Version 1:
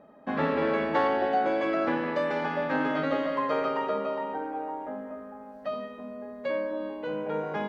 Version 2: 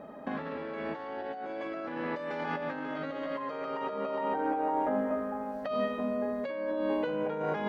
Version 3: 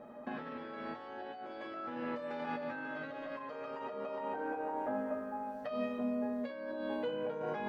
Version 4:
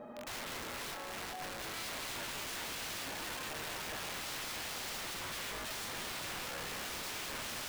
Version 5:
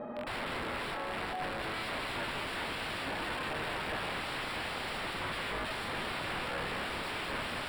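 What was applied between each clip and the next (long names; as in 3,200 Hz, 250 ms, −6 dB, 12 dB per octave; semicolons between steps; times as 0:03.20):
compressor whose output falls as the input rises −36 dBFS, ratio −1; level +2 dB
tuned comb filter 120 Hz, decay 0.18 s, harmonics all, mix 90%; level +2.5 dB
wrap-around overflow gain 40.5 dB; feedback echo with a high-pass in the loop 240 ms, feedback 72%, level −9.5 dB; level +3 dB
moving average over 7 samples; level +7.5 dB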